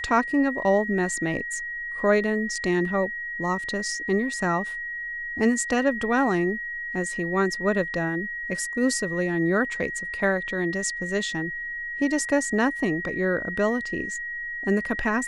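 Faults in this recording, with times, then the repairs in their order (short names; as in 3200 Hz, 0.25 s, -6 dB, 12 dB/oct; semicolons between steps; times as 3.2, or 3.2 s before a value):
tone 1900 Hz -30 dBFS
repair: notch 1900 Hz, Q 30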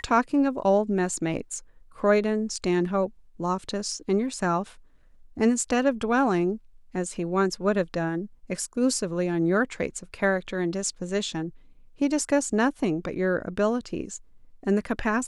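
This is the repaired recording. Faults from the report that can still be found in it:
none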